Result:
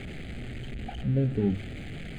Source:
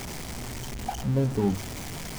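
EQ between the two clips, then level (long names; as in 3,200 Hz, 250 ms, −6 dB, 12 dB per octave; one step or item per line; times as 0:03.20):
high-frequency loss of the air 120 metres
phaser with its sweep stopped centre 2,400 Hz, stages 4
0.0 dB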